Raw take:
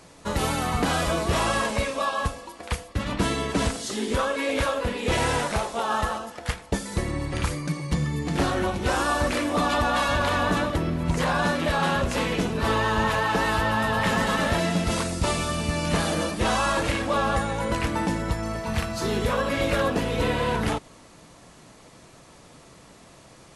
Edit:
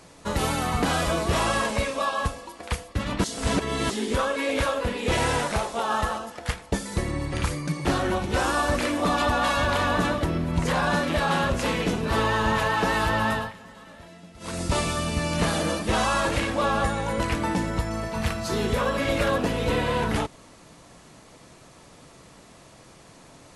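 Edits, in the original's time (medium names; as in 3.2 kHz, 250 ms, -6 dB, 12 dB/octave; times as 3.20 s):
3.24–3.90 s: reverse
7.85–8.37 s: delete
13.83–15.14 s: dip -22.5 dB, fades 0.22 s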